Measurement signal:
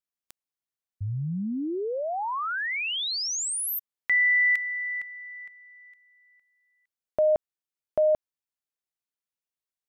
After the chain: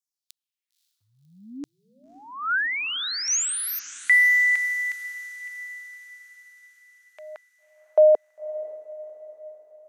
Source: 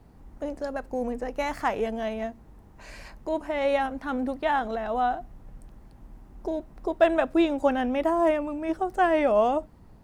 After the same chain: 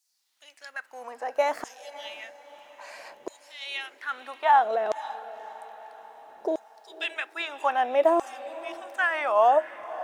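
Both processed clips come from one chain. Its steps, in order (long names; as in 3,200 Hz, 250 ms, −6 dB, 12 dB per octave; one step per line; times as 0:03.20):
auto-filter high-pass saw down 0.61 Hz 420–6,500 Hz
feedback delay with all-pass diffusion 544 ms, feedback 53%, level −16 dB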